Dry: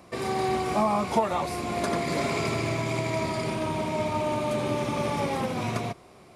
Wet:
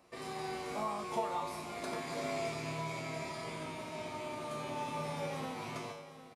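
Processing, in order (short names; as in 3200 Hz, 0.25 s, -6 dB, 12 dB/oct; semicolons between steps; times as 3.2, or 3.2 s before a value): low shelf 260 Hz -6.5 dB; resonator 52 Hz, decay 0.74 s, harmonics odd, mix 90%; on a send: echo 0.755 s -14 dB; on the sum: gain +2.5 dB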